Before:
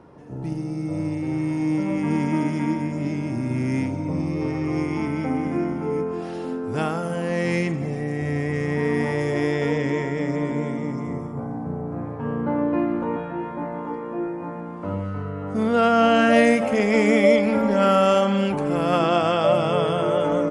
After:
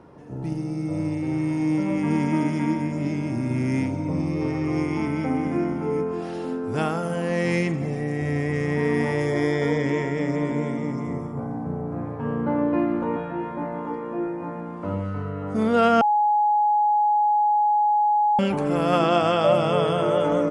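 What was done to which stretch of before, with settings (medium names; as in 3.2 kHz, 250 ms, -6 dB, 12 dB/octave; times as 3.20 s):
9.26–9.86 s: Butterworth band-stop 2.7 kHz, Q 5.4
16.01–18.39 s: bleep 837 Hz -16.5 dBFS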